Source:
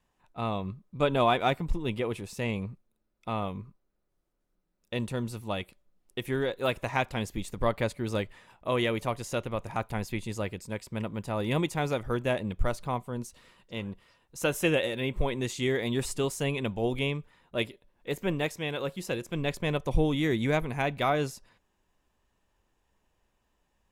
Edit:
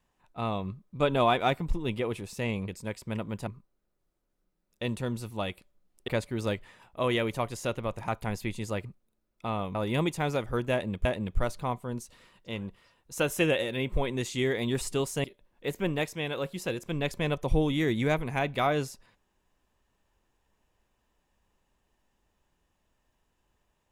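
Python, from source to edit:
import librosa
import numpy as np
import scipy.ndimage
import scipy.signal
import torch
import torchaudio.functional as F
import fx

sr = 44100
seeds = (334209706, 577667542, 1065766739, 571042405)

y = fx.edit(x, sr, fx.swap(start_s=2.68, length_s=0.9, other_s=10.53, other_length_s=0.79),
    fx.cut(start_s=6.19, length_s=1.57),
    fx.repeat(start_s=12.29, length_s=0.33, count=2),
    fx.cut(start_s=16.48, length_s=1.19), tone=tone)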